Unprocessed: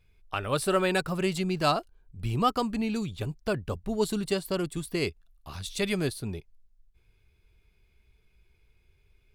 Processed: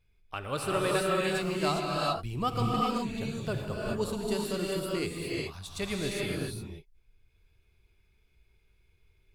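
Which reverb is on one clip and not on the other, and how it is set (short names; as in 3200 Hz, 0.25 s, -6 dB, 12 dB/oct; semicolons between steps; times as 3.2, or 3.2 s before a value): non-linear reverb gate 0.44 s rising, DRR -3 dB; gain -6 dB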